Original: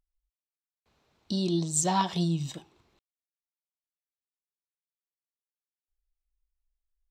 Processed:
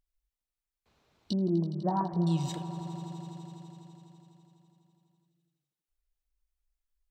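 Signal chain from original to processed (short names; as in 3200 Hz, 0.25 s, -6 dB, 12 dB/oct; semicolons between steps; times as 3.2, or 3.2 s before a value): 1.33–2.27 Gaussian blur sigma 7.8 samples; swelling echo 83 ms, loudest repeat 5, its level -18 dB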